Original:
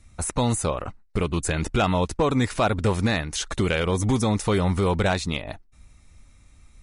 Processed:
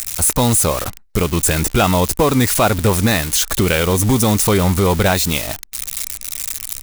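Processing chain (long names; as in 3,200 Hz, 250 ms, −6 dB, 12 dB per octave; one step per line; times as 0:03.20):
spike at every zero crossing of −19 dBFS
level +7 dB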